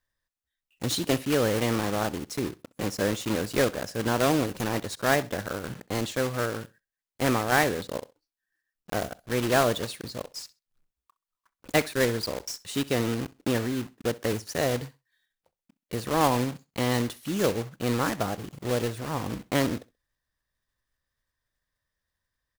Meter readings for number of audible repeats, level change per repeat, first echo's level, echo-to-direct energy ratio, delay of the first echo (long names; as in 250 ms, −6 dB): 2, −13.0 dB, −21.0 dB, −21.0 dB, 65 ms